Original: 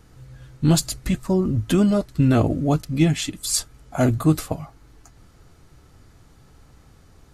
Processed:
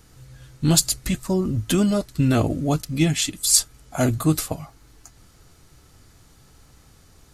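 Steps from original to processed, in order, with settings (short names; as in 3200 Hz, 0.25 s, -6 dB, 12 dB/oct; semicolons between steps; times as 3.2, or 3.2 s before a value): high shelf 2900 Hz +9.5 dB; gain -2 dB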